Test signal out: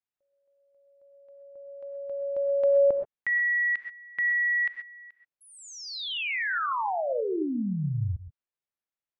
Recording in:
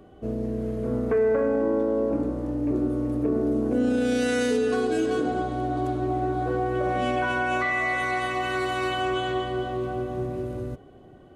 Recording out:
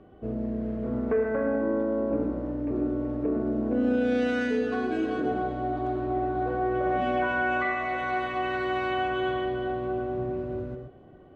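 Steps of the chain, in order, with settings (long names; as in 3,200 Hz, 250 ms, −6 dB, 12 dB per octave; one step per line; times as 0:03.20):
low-pass filter 2,800 Hz 12 dB per octave
reverb whose tail is shaped and stops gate 150 ms rising, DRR 6 dB
level −2.5 dB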